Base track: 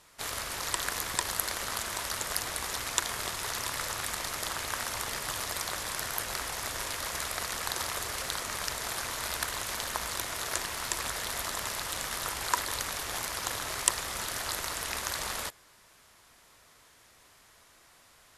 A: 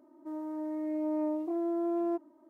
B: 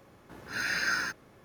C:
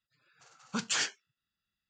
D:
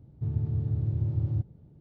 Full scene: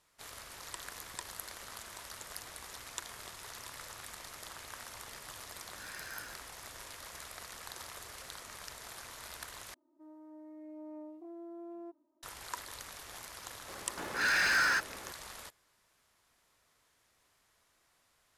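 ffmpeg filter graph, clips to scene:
ffmpeg -i bed.wav -i cue0.wav -i cue1.wav -filter_complex "[2:a]asplit=2[link_01][link_02];[0:a]volume=-13dB[link_03];[link_02]asplit=2[link_04][link_05];[link_05]highpass=frequency=720:poles=1,volume=22dB,asoftclip=type=tanh:threshold=-17dB[link_06];[link_04][link_06]amix=inputs=2:normalize=0,lowpass=frequency=4000:poles=1,volume=-6dB[link_07];[link_03]asplit=2[link_08][link_09];[link_08]atrim=end=9.744[link_10];[1:a]atrim=end=2.49,asetpts=PTS-STARTPTS,volume=-15.5dB[link_11];[link_09]atrim=start=12.226[link_12];[link_01]atrim=end=1.44,asetpts=PTS-STARTPTS,volume=-18dB,afade=type=in:duration=0.004:curve=hsin,afade=type=out:start_time=1.436:duration=0.004:curve=hsin,adelay=5240[link_13];[link_07]atrim=end=1.44,asetpts=PTS-STARTPTS,volume=-4dB,afade=type=in:duration=0.004:curve=hsin,afade=type=out:start_time=1.436:duration=0.004:curve=hsin,adelay=13680[link_14];[link_10][link_11]acrossfade=duration=0.004:curve1=hsin:curve2=hsin[link_15];[link_15][link_12]acrossfade=duration=0.004:curve1=hsin:curve2=hsin[link_16];[link_16][link_13][link_14]amix=inputs=3:normalize=0" out.wav

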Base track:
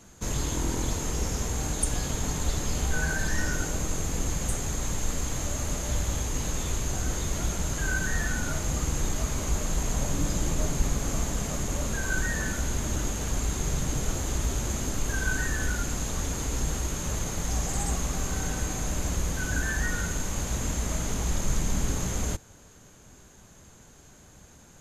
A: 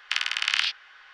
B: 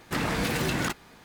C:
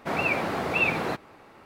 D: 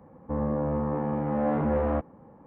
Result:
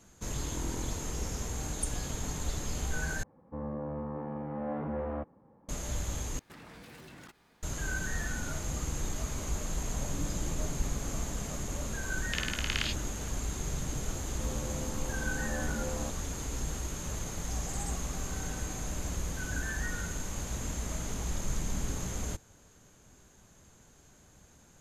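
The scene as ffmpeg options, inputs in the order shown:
ffmpeg -i bed.wav -i cue0.wav -i cue1.wav -i cue2.wav -i cue3.wav -filter_complex "[4:a]asplit=2[link_01][link_02];[0:a]volume=-6.5dB[link_03];[2:a]acompressor=threshold=-34dB:ratio=6:attack=3.2:release=140:knee=1:detection=peak[link_04];[1:a]aresample=32000,aresample=44100[link_05];[link_03]asplit=3[link_06][link_07][link_08];[link_06]atrim=end=3.234[link_09];[link_01]atrim=end=2.46,asetpts=PTS-STARTPTS,volume=-9.5dB[link_10];[link_07]atrim=start=5.686:end=6.394[link_11];[link_04]atrim=end=1.24,asetpts=PTS-STARTPTS,volume=-13dB[link_12];[link_08]atrim=start=7.626[link_13];[link_05]atrim=end=1.13,asetpts=PTS-STARTPTS,volume=-9.5dB,afade=type=in:duration=0.004:curve=hsin,afade=type=out:start_time=1.126:duration=0.004:curve=hsin,adelay=12220[link_14];[link_02]atrim=end=2.46,asetpts=PTS-STARTPTS,volume=-13dB,afade=type=in:duration=0.004:curve=hsin,afade=type=out:start_time=2.456:duration=0.004:curve=hsin,adelay=14100[link_15];[link_09][link_10]acrossfade=duration=0.004:curve1=hsin:curve2=hsin[link_16];[link_16][link_11]acrossfade=duration=0.004:curve1=hsin:curve2=hsin[link_17];[link_17][link_12]acrossfade=duration=0.004:curve1=hsin:curve2=hsin[link_18];[link_18][link_13]acrossfade=duration=0.004:curve1=hsin:curve2=hsin[link_19];[link_19][link_14][link_15]amix=inputs=3:normalize=0" out.wav

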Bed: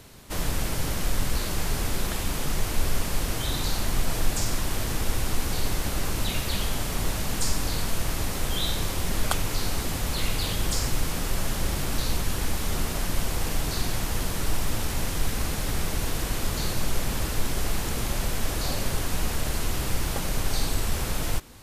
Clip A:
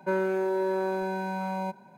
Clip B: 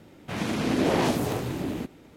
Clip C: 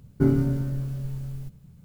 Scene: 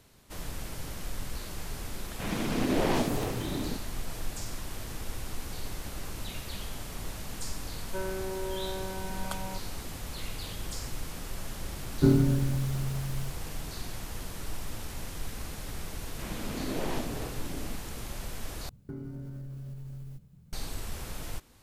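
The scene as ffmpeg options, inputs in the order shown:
ffmpeg -i bed.wav -i cue0.wav -i cue1.wav -i cue2.wav -filter_complex "[2:a]asplit=2[link_01][link_02];[3:a]asplit=2[link_03][link_04];[0:a]volume=-11dB[link_05];[link_02]lowpass=8200[link_06];[link_04]acompressor=threshold=-31dB:ratio=6:attack=3.2:release=140:knee=1:detection=peak[link_07];[link_05]asplit=2[link_08][link_09];[link_08]atrim=end=18.694[link_10];[link_07]atrim=end=1.84,asetpts=PTS-STARTPTS,volume=-6dB[link_11];[link_09]atrim=start=20.526[link_12];[link_01]atrim=end=2.16,asetpts=PTS-STARTPTS,volume=-4dB,afade=type=in:duration=0.004:curve=hsin,afade=type=out:start_time=2.156:duration=0.004:curve=hsin,adelay=1910[link_13];[1:a]atrim=end=1.97,asetpts=PTS-STARTPTS,volume=-9dB,afade=type=in:duration=0.004:curve=hsin,afade=type=out:start_time=1.966:duration=0.004:curve=hsin,adelay=7870[link_14];[link_03]atrim=end=1.84,asetpts=PTS-STARTPTS,volume=-1dB,afade=type=in:duration=0.004:curve=hsin,afade=type=out:start_time=1.836:duration=0.004:curve=hsin,adelay=11820[link_15];[link_06]atrim=end=2.16,asetpts=PTS-STARTPTS,volume=-11dB,afade=type=in:duration=0.004:curve=hsin,afade=type=out:start_time=2.156:duration=0.004:curve=hsin,adelay=15900[link_16];[link_10][link_11]acrossfade=duration=0.004:curve1=hsin:curve2=hsin[link_17];[link_17][link_12]acrossfade=duration=0.004:curve1=hsin:curve2=hsin[link_18];[link_18][link_13][link_14][link_15][link_16]amix=inputs=5:normalize=0" out.wav

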